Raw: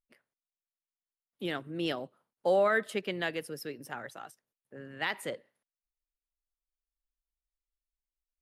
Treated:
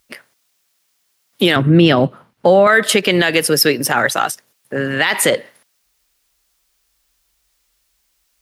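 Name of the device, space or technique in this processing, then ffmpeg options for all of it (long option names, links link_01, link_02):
mastering chain: -filter_complex "[0:a]asettb=1/sr,asplit=3[link_01][link_02][link_03];[link_01]atrim=end=1.564[link_04];[link_02]atrim=start=1.56:end=2.67,asetpts=PTS-STARTPTS,afade=type=in:duration=0.004:curve=qsin,afade=type=out:start_time=1.106:duration=0.004:curve=qsin,bass=frequency=250:gain=12,treble=frequency=4000:gain=-12[link_05];[link_03]atrim=start=2.666[link_06];[link_04][link_05]acrossfade=duration=0.004:curve1=hsin:curve2=qsin[link_07];[link_07][link_06]acrossfade=duration=0.004:curve1=qsin:curve2=hsin,highpass=49,equalizer=frequency=5200:width_type=o:width=0.77:gain=2,acompressor=threshold=-36dB:ratio=1.5,tiltshelf=frequency=970:gain=-3,alimiter=level_in=29dB:limit=-1dB:release=50:level=0:latency=1,volume=-1dB"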